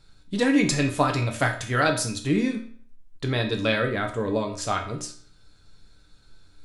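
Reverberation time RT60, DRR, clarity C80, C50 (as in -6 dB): 0.50 s, 1.5 dB, 13.0 dB, 9.5 dB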